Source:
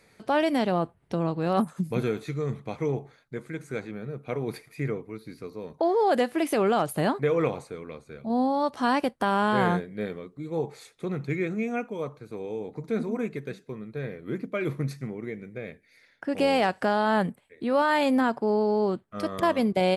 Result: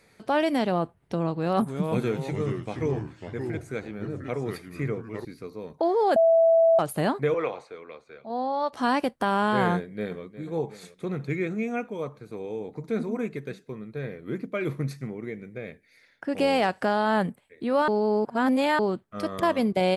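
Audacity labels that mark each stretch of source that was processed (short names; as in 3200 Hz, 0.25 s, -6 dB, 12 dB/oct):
1.320000	5.250000	echoes that change speed 0.293 s, each echo -3 st, echoes 2, each echo -6 dB
6.160000	6.790000	bleep 659 Hz -15 dBFS
7.340000	8.730000	three-band isolator lows -16 dB, under 380 Hz, highs -18 dB, over 5700 Hz
9.750000	10.220000	echo throw 0.36 s, feedback 65%, level -14.5 dB
17.880000	18.790000	reverse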